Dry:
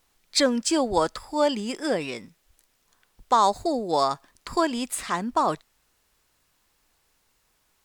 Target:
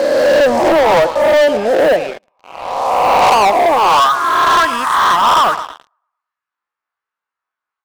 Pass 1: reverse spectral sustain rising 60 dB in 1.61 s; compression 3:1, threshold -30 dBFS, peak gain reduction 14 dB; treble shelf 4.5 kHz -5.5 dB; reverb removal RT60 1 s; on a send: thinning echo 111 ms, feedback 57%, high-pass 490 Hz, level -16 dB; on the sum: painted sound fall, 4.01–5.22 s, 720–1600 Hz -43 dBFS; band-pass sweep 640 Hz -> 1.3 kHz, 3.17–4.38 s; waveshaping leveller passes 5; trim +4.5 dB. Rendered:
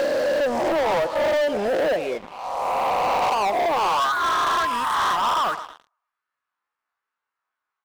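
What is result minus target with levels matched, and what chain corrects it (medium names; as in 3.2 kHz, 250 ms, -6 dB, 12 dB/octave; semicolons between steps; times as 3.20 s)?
compression: peak gain reduction +14 dB
reverse spectral sustain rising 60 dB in 1.61 s; treble shelf 4.5 kHz -5.5 dB; reverb removal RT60 1 s; on a send: thinning echo 111 ms, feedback 57%, high-pass 490 Hz, level -16 dB; on the sum: painted sound fall, 4.01–5.22 s, 720–1600 Hz -43 dBFS; band-pass sweep 640 Hz -> 1.3 kHz, 3.17–4.38 s; waveshaping leveller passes 5; trim +4.5 dB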